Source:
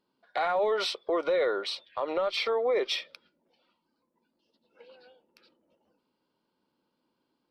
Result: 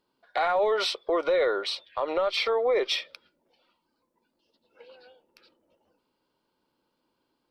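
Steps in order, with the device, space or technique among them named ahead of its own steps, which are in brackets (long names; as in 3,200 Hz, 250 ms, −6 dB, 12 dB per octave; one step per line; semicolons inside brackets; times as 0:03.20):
low shelf boost with a cut just above (low-shelf EQ 78 Hz +7 dB; parametric band 200 Hz −6 dB 1.1 octaves)
level +3 dB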